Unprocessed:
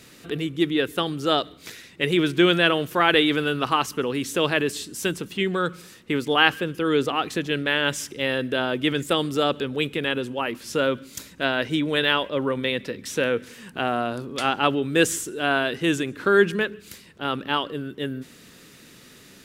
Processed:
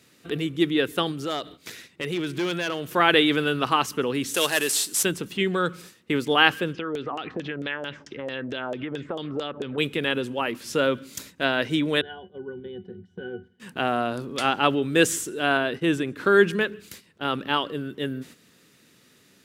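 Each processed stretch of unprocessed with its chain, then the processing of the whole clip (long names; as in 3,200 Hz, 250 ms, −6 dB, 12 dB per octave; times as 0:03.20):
0:01.11–0:02.92: hard clipping −14.5 dBFS + downward compressor 2 to 1, threshold −30 dBFS
0:04.34–0:05.03: variable-slope delta modulation 64 kbit/s + RIAA equalisation recording
0:06.73–0:09.78: downward compressor, threshold −28 dBFS + high-frequency loss of the air 75 metres + auto-filter low-pass saw down 4.5 Hz 520–7,200 Hz
0:12.01–0:13.60: low-shelf EQ 440 Hz +9 dB + resonances in every octave F#, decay 0.19 s
0:15.57–0:16.16: high-shelf EQ 2,500 Hz −6.5 dB + notch filter 6,700 Hz, Q 8.9 + downward expander −35 dBFS
whole clip: high-pass filter 75 Hz; noise gate −44 dBFS, range −9 dB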